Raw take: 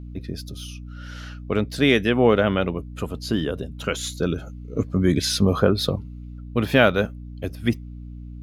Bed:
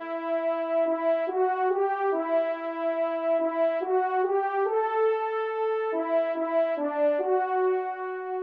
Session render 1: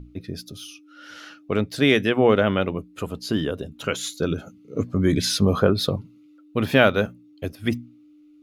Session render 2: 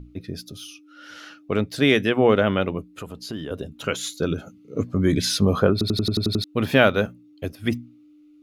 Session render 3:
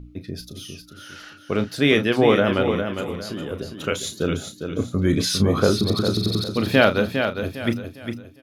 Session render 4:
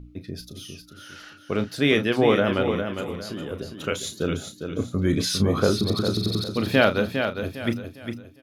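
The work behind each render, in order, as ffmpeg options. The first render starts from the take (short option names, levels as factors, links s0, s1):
-af "bandreject=f=60:t=h:w=6,bandreject=f=120:t=h:w=6,bandreject=f=180:t=h:w=6,bandreject=f=240:t=h:w=6"
-filter_complex "[0:a]asettb=1/sr,asplit=3[s0][s1][s2];[s0]atrim=end=2.854[s3];[s1]atrim=start=2.85:end=3.51,asetpts=PTS-STARTPTS,afade=t=in:d=0.004:c=qsin,afade=t=out:st=0.656:d=0.004:c=qsin,acompressor=threshold=0.02:ratio=2:attack=3.2:release=140:knee=1:detection=peak[s4];[s2]atrim=start=3.506[s5];[s3][s4]acrossfade=d=0.004:c1=hsin:c2=qsin[s6];[s6][s5]acrossfade=d=0.004:c1=qsin:c2=hsin,asplit=9[s7][s8][s9][s10][s11][s12][s13][s14][s15];[s7]atrim=end=5.812[s16];[s8]atrim=start=5.718:end=5.812[s17];[s9]atrim=start=5.718:end=5.812[s18];[s10]atrim=start=5.718:end=5.812[s19];[s11]atrim=start=5.718:end=5.812[s20];[s12]atrim=start=5.718:end=5.812[s21];[s13]atrim=start=5.718:end=5.812[s22];[s14]atrim=start=5.718:end=5.812[s23];[s15]atrim=start=6.438[s24];[s16][s17]acrossfade=d=0.004:c1=hsin:c2=hsin[s25];[s25][s18]acrossfade=d=0.004:c1=hsin:c2=hsin[s26];[s26][s19]acrossfade=d=0.004:c1=hsin:c2=hsin[s27];[s27][s20]acrossfade=d=0.004:c1=hsin:c2=hsin[s28];[s28][s21]acrossfade=d=0.004:c1=hsin:c2=hsin[s29];[s29][s22]acrossfade=d=0.004:c1=hsin:c2=hsin[s30];[s30][s23]acrossfade=d=0.004:c1=hsin:c2=hsin[s31];[s31][s24]acrossfade=d=0.004:c1=hsin:c2=hsin"
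-filter_complex "[0:a]asplit=2[s0][s1];[s1]adelay=34,volume=0.316[s2];[s0][s2]amix=inputs=2:normalize=0,asplit=2[s3][s4];[s4]aecho=0:1:405|810|1215|1620:0.447|0.147|0.0486|0.0161[s5];[s3][s5]amix=inputs=2:normalize=0"
-af "volume=0.75"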